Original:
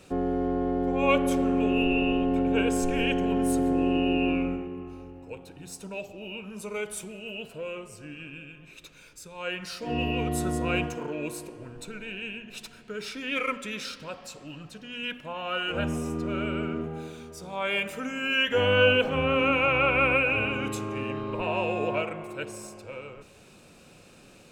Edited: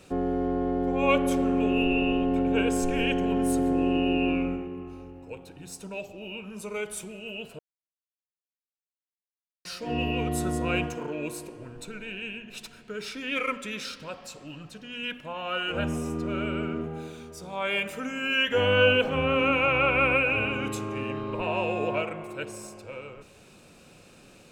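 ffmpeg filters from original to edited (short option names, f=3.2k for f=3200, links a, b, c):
-filter_complex "[0:a]asplit=3[a][b][c];[a]atrim=end=7.59,asetpts=PTS-STARTPTS,afade=t=out:st=7.586:d=0.004:c=hsin[d];[b]atrim=start=7.59:end=9.65,asetpts=PTS-STARTPTS,volume=0[e];[c]atrim=start=9.65,asetpts=PTS-STARTPTS,afade=t=in:d=0.004:c=hsin[f];[d][e][f]concat=n=3:v=0:a=1"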